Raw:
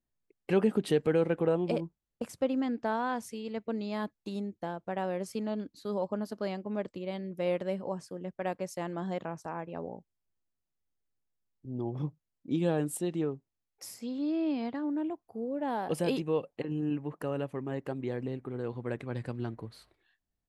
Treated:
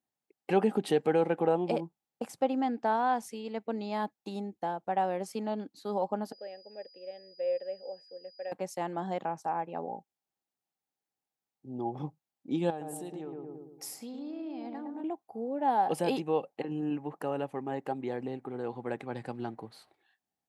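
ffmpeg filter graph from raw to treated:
ffmpeg -i in.wav -filter_complex "[0:a]asettb=1/sr,asplit=3[link_01][link_02][link_03];[link_01]atrim=end=6.324[link_04];[link_02]atrim=start=6.32:end=8.52,asetpts=PTS-STARTPTS,afade=type=in:duration=0.004:curve=qsin,afade=type=out:start_time=2.196:duration=0.004:curve=qsin,asplit=3[link_05][link_06][link_07];[link_05]bandpass=frequency=530:width_type=q:width=8,volume=0dB[link_08];[link_06]bandpass=frequency=1840:width_type=q:width=8,volume=-6dB[link_09];[link_07]bandpass=frequency=2480:width_type=q:width=8,volume=-9dB[link_10];[link_08][link_09][link_10]amix=inputs=3:normalize=0,aeval=exprs='val(0)+0.00158*sin(2*PI*4900*n/s)':channel_layout=same[link_11];[link_03]atrim=start=8.516[link_12];[link_04][link_11]acrossfade=duration=0.004:curve1=hsin:curve2=qsin[link_13];[link_13][link_12]acrossfade=duration=0.004:curve1=qsin:curve2=hsin,asettb=1/sr,asplit=3[link_14][link_15][link_16];[link_14]atrim=end=12.704[link_17];[link_15]atrim=start=12.7:end=15.04,asetpts=PTS-STARTPTS,afade=type=in:duration=0.004:curve=qsin,afade=type=out:start_time=2.336:duration=0.004:curve=qsin,asplit=2[link_18][link_19];[link_19]adelay=111,lowpass=frequency=960:poles=1,volume=-3dB,asplit=2[link_20][link_21];[link_21]adelay=111,lowpass=frequency=960:poles=1,volume=0.52,asplit=2[link_22][link_23];[link_23]adelay=111,lowpass=frequency=960:poles=1,volume=0.52,asplit=2[link_24][link_25];[link_25]adelay=111,lowpass=frequency=960:poles=1,volume=0.52,asplit=2[link_26][link_27];[link_27]adelay=111,lowpass=frequency=960:poles=1,volume=0.52,asplit=2[link_28][link_29];[link_29]adelay=111,lowpass=frequency=960:poles=1,volume=0.52,asplit=2[link_30][link_31];[link_31]adelay=111,lowpass=frequency=960:poles=1,volume=0.52[link_32];[link_18][link_20][link_22][link_24][link_26][link_28][link_30][link_32]amix=inputs=8:normalize=0,atrim=end_sample=103194,acompressor=threshold=-38dB:ratio=4:attack=3.2:release=140:knee=1:detection=peak,highshelf=frequency=7600:gain=5.5[link_33];[link_16]atrim=start=15.036[link_34];[link_17][link_33]acrossfade=duration=0.004:curve1=hsin:curve2=qsin[link_35];[link_35][link_34]acrossfade=duration=0.004:curve1=qsin:curve2=hsin,highpass=180,equalizer=frequency=800:width_type=o:width=0.24:gain=13" out.wav

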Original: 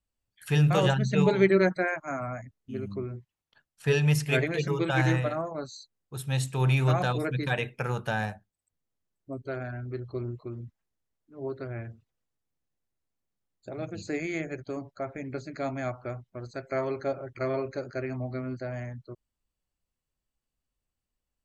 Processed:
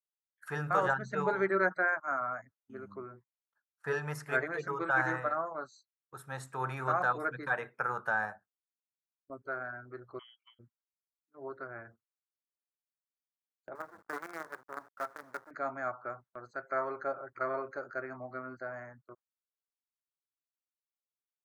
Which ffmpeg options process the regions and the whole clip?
ffmpeg -i in.wav -filter_complex "[0:a]asettb=1/sr,asplit=3[link_01][link_02][link_03];[link_01]atrim=end=10.194[link_04];[link_02]atrim=start=10.19:end=10.59,asetpts=PTS-STARTPTS,afade=type=in:duration=0.004:curve=qsin,afade=type=out:start_time=0.396:duration=0.004:curve=qsin,highpass=210,lowpass=frequency=2900:width_type=q:width=0.5098,lowpass=frequency=2900:width_type=q:width=0.6013,lowpass=frequency=2900:width_type=q:width=0.9,lowpass=frequency=2900:width_type=q:width=2.563,afreqshift=-3400[link_05];[link_03]atrim=start=10.586[link_06];[link_04][link_05]acrossfade=duration=0.004:curve1=hsin:curve2=qsin[link_07];[link_07][link_06]acrossfade=duration=0.004:curve1=qsin:curve2=hsin,asettb=1/sr,asplit=3[link_08][link_09][link_10];[link_08]atrim=end=13.754[link_11];[link_09]atrim=start=13.75:end=15.51,asetpts=PTS-STARTPTS,afade=type=in:duration=0.004:curve=qsin,afade=type=out:start_time=1.756:duration=0.004:curve=qsin,lowpass=frequency=1800:width=0.5412,lowpass=frequency=1800:width=1.3066,lowshelf=frequency=330:gain=-8,acrusher=bits=6:dc=4:mix=0:aa=0.000001[link_12];[link_10]atrim=start=15.506[link_13];[link_11][link_12]acrossfade=duration=0.004:curve1=hsin:curve2=qsin[link_14];[link_14][link_13]acrossfade=duration=0.004:curve1=qsin:curve2=hsin,highpass=frequency=1100:poles=1,highshelf=frequency=2000:width_type=q:width=3:gain=-12.5,agate=range=-18dB:threshold=-57dB:ratio=16:detection=peak" out.wav

